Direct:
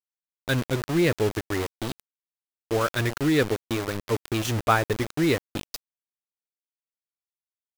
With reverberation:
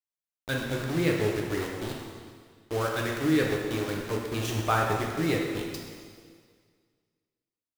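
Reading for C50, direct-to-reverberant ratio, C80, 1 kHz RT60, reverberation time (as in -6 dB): 1.5 dB, -1.0 dB, 3.5 dB, 1.9 s, 1.9 s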